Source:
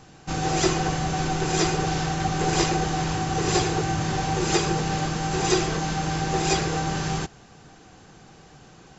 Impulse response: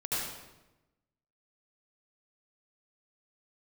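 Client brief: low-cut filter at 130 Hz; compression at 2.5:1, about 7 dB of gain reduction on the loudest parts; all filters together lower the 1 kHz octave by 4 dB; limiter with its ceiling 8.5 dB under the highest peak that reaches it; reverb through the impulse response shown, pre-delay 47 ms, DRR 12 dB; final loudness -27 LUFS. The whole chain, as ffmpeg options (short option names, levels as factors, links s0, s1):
-filter_complex "[0:a]highpass=130,equalizer=f=1000:t=o:g=-6,acompressor=threshold=0.0398:ratio=2.5,alimiter=limit=0.0668:level=0:latency=1,asplit=2[s0][s1];[1:a]atrim=start_sample=2205,adelay=47[s2];[s1][s2]afir=irnorm=-1:irlink=0,volume=0.119[s3];[s0][s3]amix=inputs=2:normalize=0,volume=1.78"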